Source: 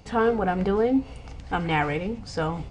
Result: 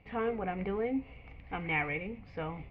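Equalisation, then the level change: ladder low-pass 2500 Hz, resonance 65%; bell 1500 Hz -8.5 dB 0.36 oct; notch 880 Hz, Q 18; 0.0 dB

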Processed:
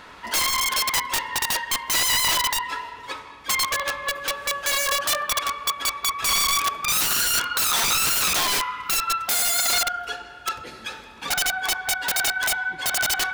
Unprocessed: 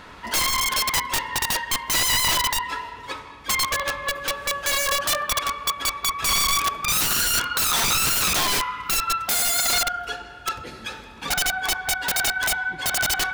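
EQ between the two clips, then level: low shelf 260 Hz -7.5 dB; 0.0 dB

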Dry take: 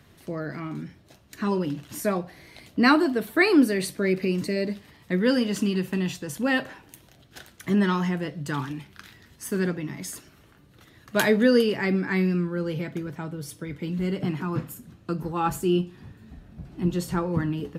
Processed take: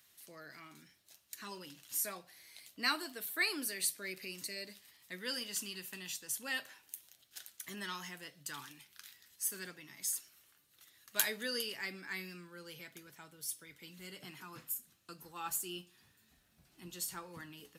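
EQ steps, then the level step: pre-emphasis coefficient 0.97; 0.0 dB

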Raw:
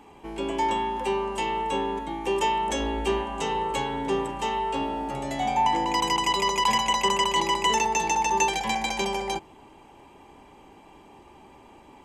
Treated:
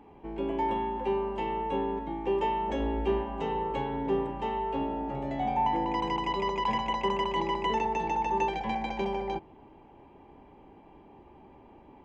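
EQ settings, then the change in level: tape spacing loss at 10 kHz 40 dB; bell 1200 Hz -3.5 dB 0.61 oct; 0.0 dB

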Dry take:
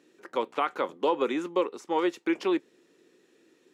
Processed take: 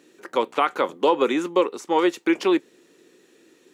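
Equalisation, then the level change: high shelf 5400 Hz +5.5 dB; notch 5200 Hz, Q 28; +6.5 dB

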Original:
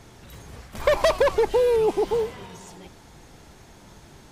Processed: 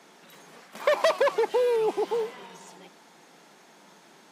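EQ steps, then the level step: steep high-pass 160 Hz 72 dB/oct; low shelf 380 Hz -10 dB; high shelf 4100 Hz -5.5 dB; 0.0 dB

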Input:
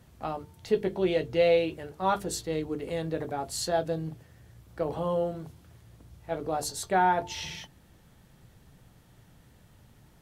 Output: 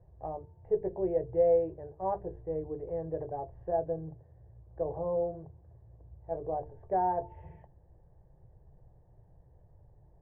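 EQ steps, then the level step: elliptic low-pass 1600 Hz, stop band 60 dB; tilt -1.5 dB/oct; fixed phaser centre 570 Hz, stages 4; -3.0 dB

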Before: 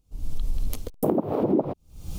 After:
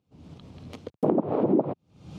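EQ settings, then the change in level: HPF 110 Hz 24 dB/oct; LPF 3100 Hz 12 dB/oct; 0.0 dB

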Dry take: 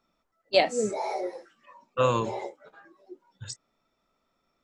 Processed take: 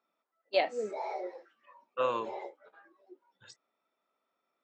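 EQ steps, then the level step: BPF 360–3400 Hz; -5.5 dB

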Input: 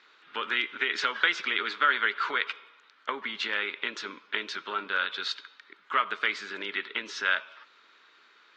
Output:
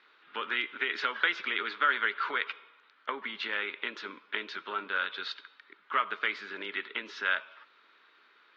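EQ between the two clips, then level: BPF 150–4600 Hz; air absorption 72 m; -2.0 dB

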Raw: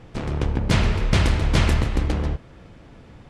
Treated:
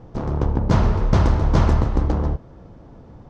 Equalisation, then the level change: high shelf 8500 Hz +8 dB; dynamic EQ 1200 Hz, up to +4 dB, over -38 dBFS, Q 1.2; EQ curve 940 Hz 0 dB, 2400 Hz -16 dB, 6100 Hz -10 dB, 9300 Hz -26 dB; +2.5 dB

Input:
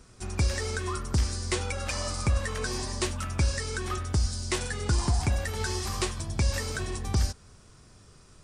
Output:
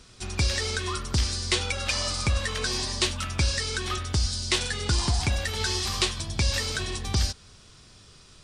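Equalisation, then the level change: bell 3600 Hz +11.5 dB 1.4 oct; 0.0 dB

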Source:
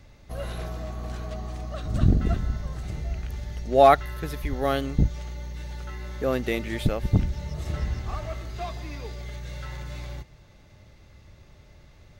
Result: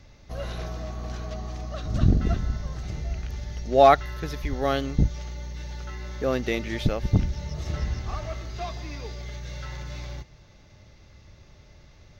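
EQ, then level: resonant high shelf 7100 Hz -6 dB, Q 3; 0.0 dB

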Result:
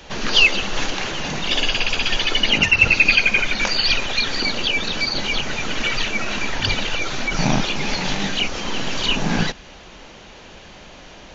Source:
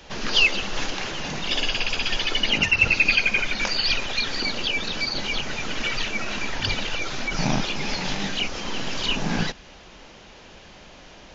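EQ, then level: notch 5100 Hz, Q 16; +4.5 dB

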